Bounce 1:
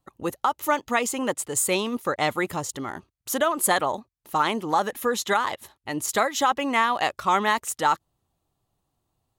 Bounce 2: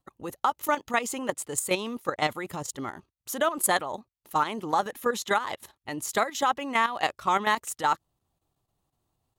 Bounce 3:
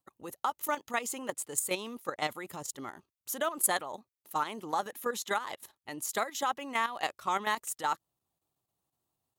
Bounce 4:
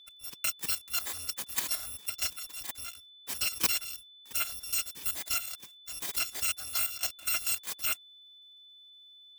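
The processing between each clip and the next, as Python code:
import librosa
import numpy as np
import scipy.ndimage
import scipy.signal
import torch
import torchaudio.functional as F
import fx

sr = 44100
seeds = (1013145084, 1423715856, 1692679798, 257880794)

y1 = fx.level_steps(x, sr, step_db=11)
y2 = fx.highpass(y1, sr, hz=160.0, slope=6)
y2 = fx.high_shelf(y2, sr, hz=7700.0, db=8.0)
y2 = y2 * librosa.db_to_amplitude(-6.5)
y3 = fx.bit_reversed(y2, sr, seeds[0], block=256)
y3 = y3 + 10.0 ** (-52.0 / 20.0) * np.sin(2.0 * np.pi * 3500.0 * np.arange(len(y3)) / sr)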